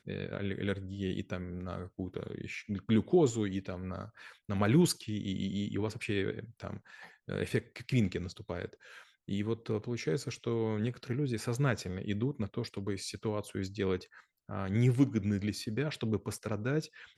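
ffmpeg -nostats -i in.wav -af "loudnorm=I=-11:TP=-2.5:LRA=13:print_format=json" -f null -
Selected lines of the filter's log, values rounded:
"input_i" : "-33.9",
"input_tp" : "-13.8",
"input_lra" : "4.4",
"input_thresh" : "-44.3",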